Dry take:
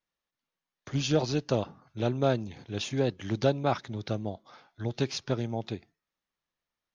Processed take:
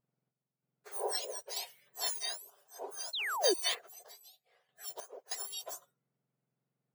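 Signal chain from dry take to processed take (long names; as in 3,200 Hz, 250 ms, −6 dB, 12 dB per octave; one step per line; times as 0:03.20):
frequency axis turned over on the octave scale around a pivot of 1,600 Hz
sound drawn into the spectrogram fall, 0:03.13–0:03.54, 330–4,400 Hz −28 dBFS
sample-and-hold tremolo 3.2 Hz, depth 85%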